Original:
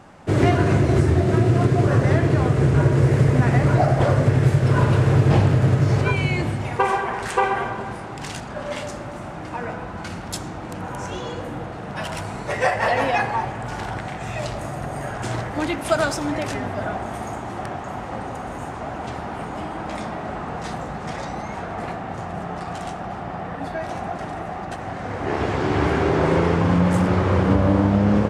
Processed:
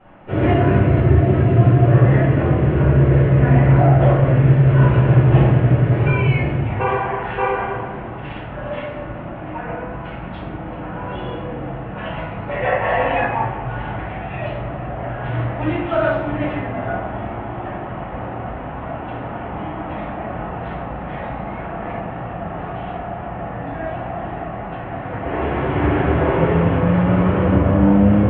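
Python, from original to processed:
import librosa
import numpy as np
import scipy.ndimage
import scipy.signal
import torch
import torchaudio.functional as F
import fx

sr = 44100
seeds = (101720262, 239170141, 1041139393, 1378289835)

y = scipy.signal.sosfilt(scipy.signal.butter(8, 3100.0, 'lowpass', fs=sr, output='sos'), x)
y = fx.room_shoebox(y, sr, seeds[0], volume_m3=160.0, walls='mixed', distance_m=4.6)
y = F.gain(torch.from_numpy(y), -12.5).numpy()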